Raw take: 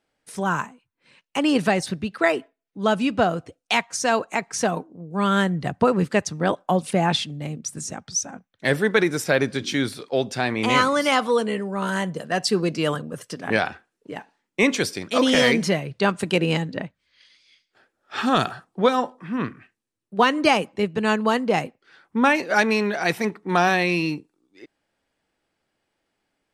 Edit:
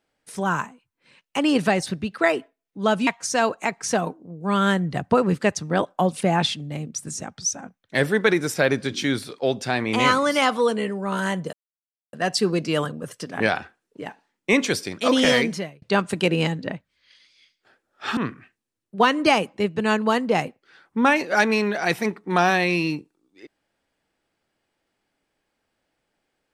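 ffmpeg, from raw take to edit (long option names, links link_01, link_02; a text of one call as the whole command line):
ffmpeg -i in.wav -filter_complex "[0:a]asplit=5[link_01][link_02][link_03][link_04][link_05];[link_01]atrim=end=3.072[link_06];[link_02]atrim=start=3.768:end=12.23,asetpts=PTS-STARTPTS,afade=type=out:start_time=8.458:duration=0.004:curve=hsin,apad=pad_dur=0.6[link_07];[link_03]atrim=start=12.23:end=15.92,asetpts=PTS-STARTPTS,afade=type=in:duration=0.004:curve=hsin,afade=type=out:start_time=3.16:duration=0.53[link_08];[link_04]atrim=start=15.92:end=18.272,asetpts=PTS-STARTPTS,afade=type=in:duration=0.004:curve=hsin[link_09];[link_05]atrim=start=19.358[link_10];[link_07][link_08][link_09]concat=n=3:v=0:a=1[link_11];[link_06][link_11]acrossfade=duration=0.004:curve1=hsin:curve2=hsin[link_12];[link_12][link_10]acrossfade=duration=0.004:curve1=hsin:curve2=hsin" out.wav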